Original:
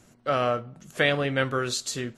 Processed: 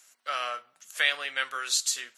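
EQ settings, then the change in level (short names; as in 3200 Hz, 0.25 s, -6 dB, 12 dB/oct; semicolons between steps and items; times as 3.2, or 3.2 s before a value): HPF 1400 Hz 12 dB/oct; high shelf 5200 Hz +8 dB; 0.0 dB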